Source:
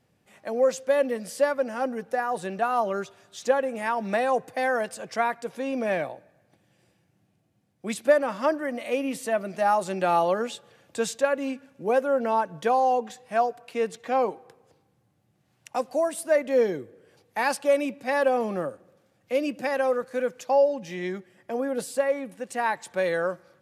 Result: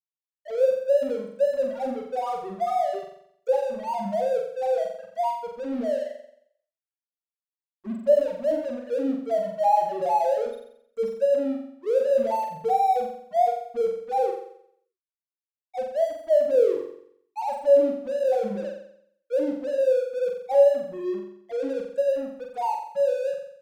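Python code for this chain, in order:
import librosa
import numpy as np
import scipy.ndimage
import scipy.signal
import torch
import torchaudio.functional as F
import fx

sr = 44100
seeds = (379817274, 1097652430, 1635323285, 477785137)

y = fx.spec_topn(x, sr, count=1)
y = np.sign(y) * np.maximum(np.abs(y) - 10.0 ** (-49.5 / 20.0), 0.0)
y = fx.room_flutter(y, sr, wall_m=7.6, rt60_s=0.67)
y = y * 10.0 ** (6.5 / 20.0)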